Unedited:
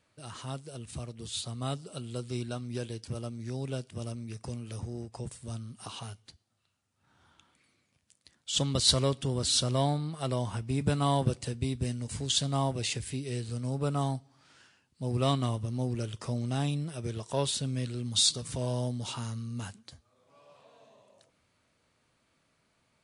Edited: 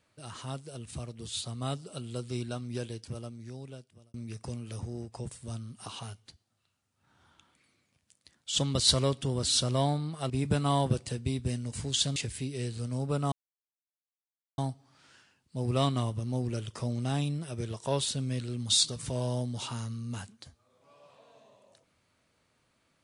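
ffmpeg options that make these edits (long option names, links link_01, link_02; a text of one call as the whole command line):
ffmpeg -i in.wav -filter_complex "[0:a]asplit=5[link_01][link_02][link_03][link_04][link_05];[link_01]atrim=end=4.14,asetpts=PTS-STARTPTS,afade=type=out:start_time=2.8:duration=1.34[link_06];[link_02]atrim=start=4.14:end=10.302,asetpts=PTS-STARTPTS,afade=type=in:duration=0.004:curve=hsin[link_07];[link_03]atrim=start=10.658:end=12.522[link_08];[link_04]atrim=start=12.878:end=14.04,asetpts=PTS-STARTPTS,afade=type=out:start_time=1.158:duration=0.004:curve=hsin,apad=pad_dur=1.26[link_09];[link_05]atrim=start=14.04,asetpts=PTS-STARTPTS,afade=type=in:duration=0.004:curve=hsin[link_10];[link_06][link_07]concat=n=2:v=0:a=1[link_11];[link_11][link_08]acrossfade=duration=0.004:curve1=hsin:curve2=hsin[link_12];[link_09][link_10]concat=n=2:v=0:a=1[link_13];[link_12][link_13]acrossfade=duration=0.004:curve1=hsin:curve2=hsin" out.wav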